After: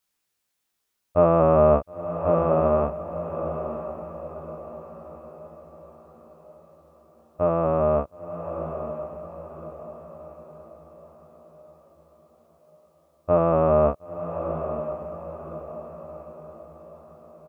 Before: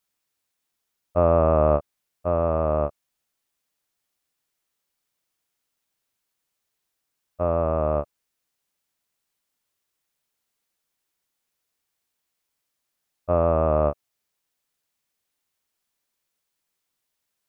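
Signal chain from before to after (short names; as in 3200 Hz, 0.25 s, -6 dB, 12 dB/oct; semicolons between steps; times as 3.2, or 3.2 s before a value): doubler 18 ms -3 dB; diffused feedback echo 0.969 s, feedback 45%, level -9 dB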